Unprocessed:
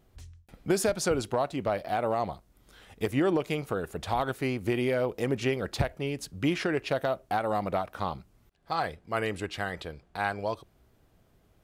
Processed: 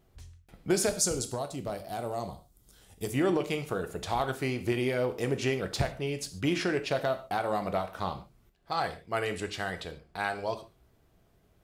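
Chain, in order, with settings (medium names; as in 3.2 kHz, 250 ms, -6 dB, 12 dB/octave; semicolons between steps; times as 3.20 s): 0.89–3.14 s: FFT filter 110 Hz 0 dB, 2.2 kHz -10 dB, 7.5 kHz +6 dB; gated-style reverb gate 170 ms falling, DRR 7.5 dB; dynamic bell 6.5 kHz, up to +5 dB, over -51 dBFS, Q 0.72; trim -2 dB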